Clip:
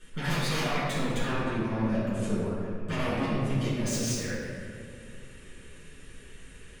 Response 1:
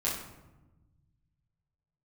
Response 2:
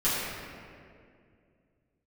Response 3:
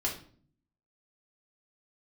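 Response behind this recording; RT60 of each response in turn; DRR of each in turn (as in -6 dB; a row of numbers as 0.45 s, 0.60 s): 2; 1.1 s, 2.3 s, 0.50 s; -7.5 dB, -13.0 dB, -5.5 dB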